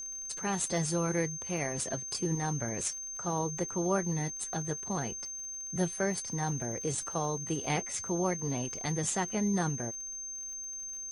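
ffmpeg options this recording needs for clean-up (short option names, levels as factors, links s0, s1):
-af "adeclick=t=4,bandreject=f=6300:w=30,agate=range=0.0891:threshold=0.0224"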